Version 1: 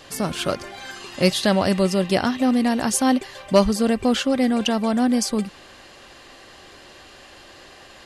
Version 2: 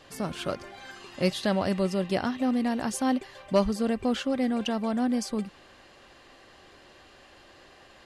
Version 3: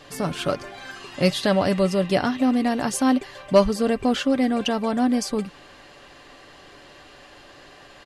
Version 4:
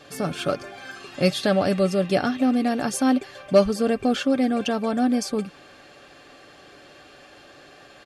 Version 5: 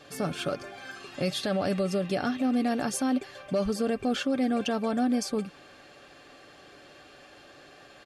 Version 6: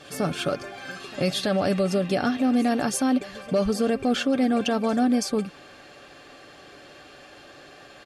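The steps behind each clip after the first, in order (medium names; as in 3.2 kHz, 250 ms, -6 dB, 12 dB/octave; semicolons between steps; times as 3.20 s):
treble shelf 3.9 kHz -6.5 dB; trim -7 dB
comb 6.9 ms, depth 34%; trim +6 dB
comb of notches 970 Hz
peak limiter -15.5 dBFS, peak gain reduction 10 dB; trim -3.5 dB
reverse echo 329 ms -20.5 dB; trim +4.5 dB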